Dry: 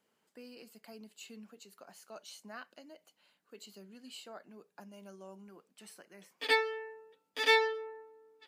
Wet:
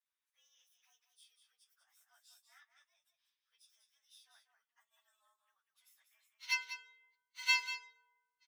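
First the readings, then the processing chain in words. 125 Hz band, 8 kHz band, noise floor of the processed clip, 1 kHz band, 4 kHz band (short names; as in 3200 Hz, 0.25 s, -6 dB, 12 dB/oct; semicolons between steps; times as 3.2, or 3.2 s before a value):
n/a, -0.5 dB, under -85 dBFS, -12.0 dB, -3.5 dB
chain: inharmonic rescaling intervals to 108%; Bessel high-pass 1600 Hz, order 6; echo 0.193 s -7.5 dB; upward expander 1.5:1, over -45 dBFS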